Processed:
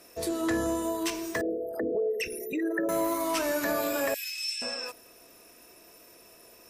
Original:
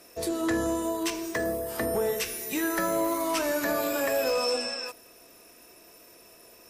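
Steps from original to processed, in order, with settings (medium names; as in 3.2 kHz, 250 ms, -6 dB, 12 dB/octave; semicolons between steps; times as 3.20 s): 1.41–2.89 s: resonances exaggerated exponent 3; 4.14–4.62 s: steep high-pass 2 kHz 48 dB/octave; trim -1 dB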